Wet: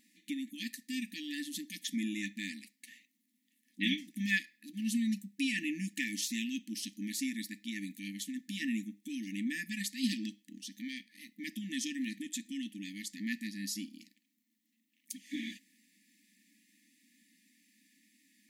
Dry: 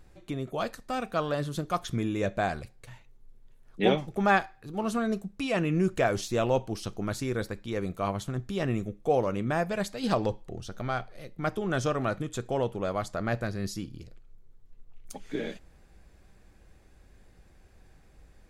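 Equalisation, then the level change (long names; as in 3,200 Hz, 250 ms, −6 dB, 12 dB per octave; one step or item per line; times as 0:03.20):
linear-phase brick-wall high-pass 200 Hz
linear-phase brick-wall band-stop 310–1,700 Hz
high-shelf EQ 11,000 Hz +10.5 dB
0.0 dB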